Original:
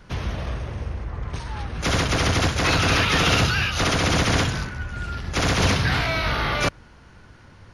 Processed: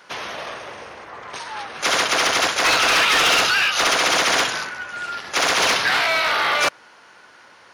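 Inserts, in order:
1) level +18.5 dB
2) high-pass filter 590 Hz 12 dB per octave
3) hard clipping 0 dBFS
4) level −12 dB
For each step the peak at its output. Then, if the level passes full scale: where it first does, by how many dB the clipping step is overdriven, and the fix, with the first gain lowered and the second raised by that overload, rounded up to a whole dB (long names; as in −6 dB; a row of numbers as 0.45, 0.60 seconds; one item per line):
+11.0, +10.0, 0.0, −12.0 dBFS
step 1, 10.0 dB
step 1 +8.5 dB, step 4 −2 dB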